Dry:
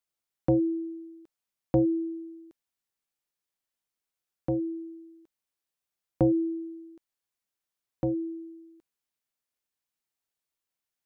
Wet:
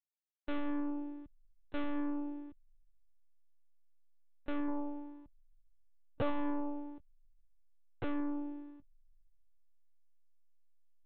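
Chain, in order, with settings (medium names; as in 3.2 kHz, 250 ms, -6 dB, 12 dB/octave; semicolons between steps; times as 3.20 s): valve stage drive 38 dB, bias 0.45; de-hum 292.6 Hz, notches 24; hysteresis with a dead band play -59 dBFS; time-frequency box 4.69–7.35 s, 380–1200 Hz +7 dB; monotone LPC vocoder at 8 kHz 290 Hz; trim +5.5 dB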